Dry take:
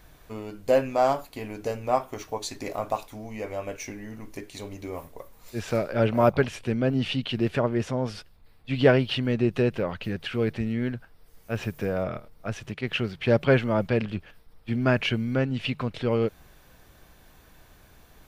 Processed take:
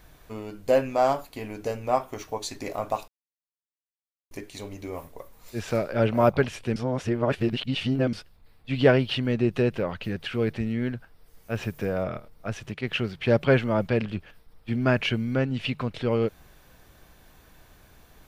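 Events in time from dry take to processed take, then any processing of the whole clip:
3.08–4.31 mute
6.76–8.13 reverse

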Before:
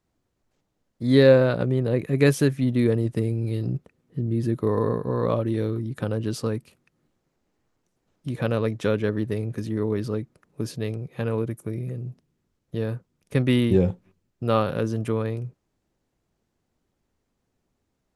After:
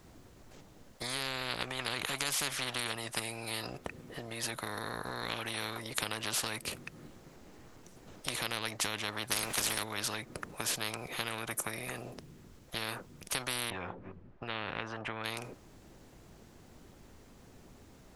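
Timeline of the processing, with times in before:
1.79–2.92 bell 2200 Hz +13.5 dB 2.7 oct
9.3–9.82 spectral limiter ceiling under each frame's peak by 23 dB
13.7–15.24 LPF 1500 Hz
whole clip: compressor 3:1, threshold -28 dBFS; spectral compressor 10:1

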